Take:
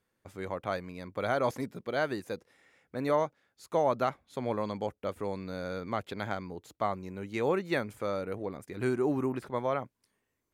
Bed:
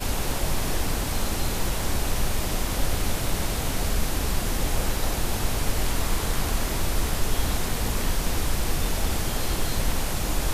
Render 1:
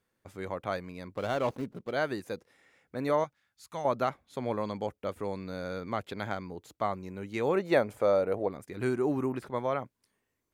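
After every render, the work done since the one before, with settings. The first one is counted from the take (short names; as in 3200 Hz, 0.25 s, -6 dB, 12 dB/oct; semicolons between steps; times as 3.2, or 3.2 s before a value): 1.15–1.92 median filter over 25 samples; 3.24–3.85 bell 420 Hz -15 dB 1.8 oct; 7.55–8.48 bell 630 Hz +10.5 dB 1.2 oct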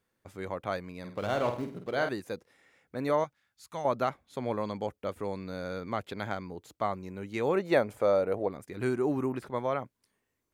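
0.99–2.09 flutter echo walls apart 8.5 m, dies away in 0.42 s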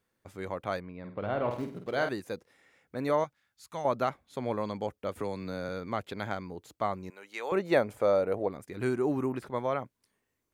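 0.8–1.51 air absorption 430 m; 5.15–5.69 three-band squash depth 70%; 7.1–7.52 HPF 750 Hz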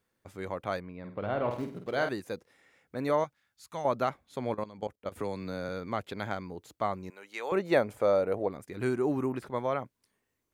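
4.54–5.12 level quantiser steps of 16 dB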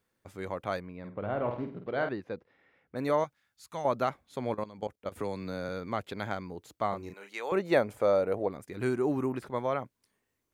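1.09–2.96 air absorption 300 m; 6.89–7.33 doubler 35 ms -5 dB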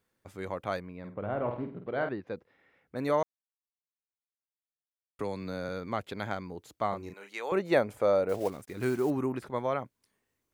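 1.14–2.27 air absorption 170 m; 3.23–5.19 mute; 8.29–9.11 block floating point 5-bit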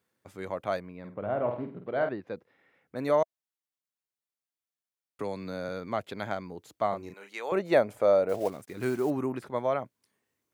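HPF 100 Hz; dynamic EQ 640 Hz, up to +6 dB, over -44 dBFS, Q 4.6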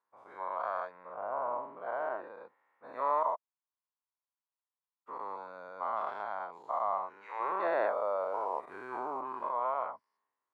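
spectral dilation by 0.24 s; band-pass 1000 Hz, Q 4.7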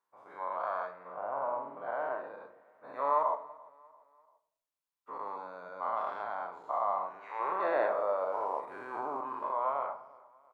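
feedback echo 0.342 s, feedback 44%, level -23 dB; shoebox room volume 130 m³, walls mixed, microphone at 0.38 m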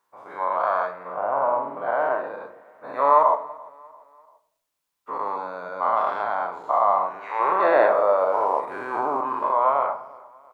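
gain +12 dB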